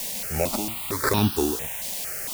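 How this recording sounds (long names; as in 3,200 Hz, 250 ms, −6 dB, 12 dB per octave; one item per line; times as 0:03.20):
aliases and images of a low sample rate 3,100 Hz, jitter 0%
tremolo triangle 1 Hz, depth 95%
a quantiser's noise floor 6 bits, dither triangular
notches that jump at a steady rate 4.4 Hz 350–2,100 Hz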